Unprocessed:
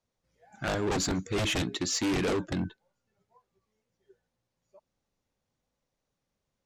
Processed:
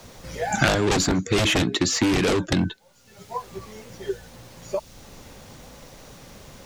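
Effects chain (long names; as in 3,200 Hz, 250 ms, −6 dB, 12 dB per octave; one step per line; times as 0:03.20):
multiband upward and downward compressor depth 100%
level +8.5 dB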